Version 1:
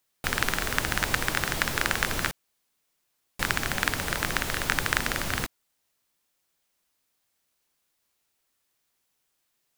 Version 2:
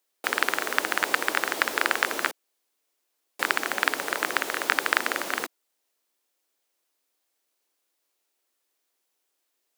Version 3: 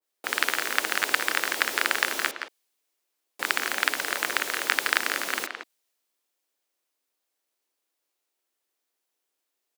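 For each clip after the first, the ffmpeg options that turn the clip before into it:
-filter_complex "[0:a]highpass=f=310:w=0.5412,highpass=f=310:w=1.3066,asplit=2[a][b];[b]adynamicsmooth=sensitivity=1:basefreq=860,volume=-1dB[c];[a][c]amix=inputs=2:normalize=0,volume=-1.5dB"
-filter_complex "[0:a]lowshelf=f=100:g=5.5,asplit=2[a][b];[b]adelay=170,highpass=300,lowpass=3.4k,asoftclip=type=hard:threshold=-10dB,volume=-6dB[c];[a][c]amix=inputs=2:normalize=0,adynamicequalizer=threshold=0.0126:dfrequency=1700:dqfactor=0.7:tfrequency=1700:tqfactor=0.7:attack=5:release=100:ratio=0.375:range=3.5:mode=boostabove:tftype=highshelf,volume=-4.5dB"

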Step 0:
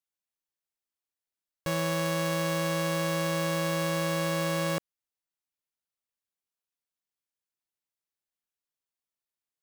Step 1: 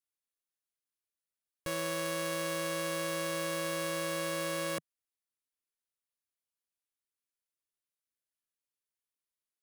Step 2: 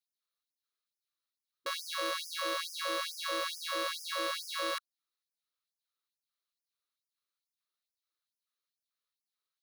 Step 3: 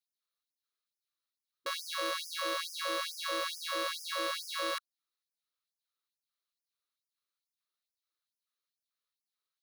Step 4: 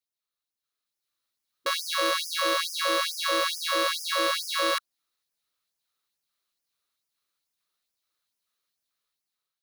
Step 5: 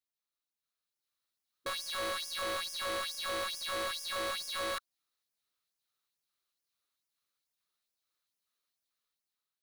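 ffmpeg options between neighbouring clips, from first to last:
-af "equalizer=f=160:t=o:w=0.33:g=-10,equalizer=f=800:t=o:w=0.33:g=-10,equalizer=f=10k:t=o:w=0.33:g=6,volume=-4dB"
-af "equalizer=f=800:t=o:w=0.33:g=-6,equalizer=f=1.25k:t=o:w=0.33:g=12,equalizer=f=4k:t=o:w=0.33:g=11,equalizer=f=8k:t=o:w=0.33:g=-9,equalizer=f=12.5k:t=o:w=0.33:g=-6,afftfilt=real='re*gte(b*sr/1024,260*pow(4900/260,0.5+0.5*sin(2*PI*2.3*pts/sr)))':imag='im*gte(b*sr/1024,260*pow(4900/260,0.5+0.5*sin(2*PI*2.3*pts/sr)))':win_size=1024:overlap=0.75"
-af anull
-af "dynaudnorm=f=380:g=5:m=9dB"
-af "asoftclip=type=hard:threshold=-29dB,volume=-4.5dB"

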